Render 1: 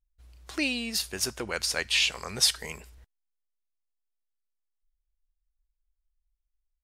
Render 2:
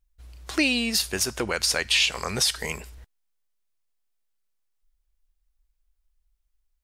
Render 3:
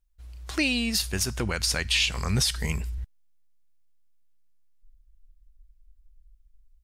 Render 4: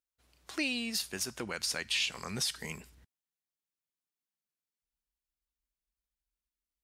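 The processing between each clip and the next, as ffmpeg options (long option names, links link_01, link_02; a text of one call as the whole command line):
ffmpeg -i in.wav -af "alimiter=limit=-18.5dB:level=0:latency=1:release=123,volume=7.5dB" out.wav
ffmpeg -i in.wav -af "asubboost=boost=8.5:cutoff=200,volume=-2.5dB" out.wav
ffmpeg -i in.wav -af "highpass=210,volume=-7.5dB" out.wav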